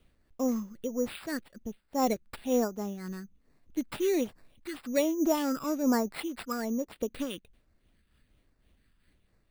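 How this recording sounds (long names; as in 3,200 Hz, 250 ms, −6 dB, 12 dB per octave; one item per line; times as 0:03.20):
phaser sweep stages 8, 1.2 Hz, lowest notch 710–3,000 Hz
aliases and images of a low sample rate 6,300 Hz, jitter 0%
amplitude modulation by smooth noise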